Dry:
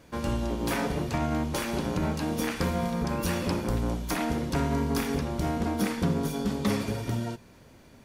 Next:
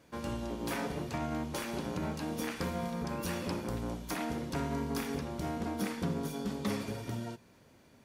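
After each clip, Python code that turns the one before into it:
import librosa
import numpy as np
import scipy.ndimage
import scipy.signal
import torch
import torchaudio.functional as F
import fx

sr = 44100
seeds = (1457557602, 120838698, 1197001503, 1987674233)

y = fx.highpass(x, sr, hz=96.0, slope=6)
y = y * librosa.db_to_amplitude(-6.5)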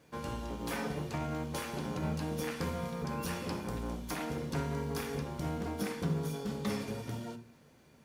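y = fx.quant_companded(x, sr, bits=8)
y = fx.rev_fdn(y, sr, rt60_s=0.44, lf_ratio=1.45, hf_ratio=0.8, size_ms=39.0, drr_db=7.5)
y = y * librosa.db_to_amplitude(-1.5)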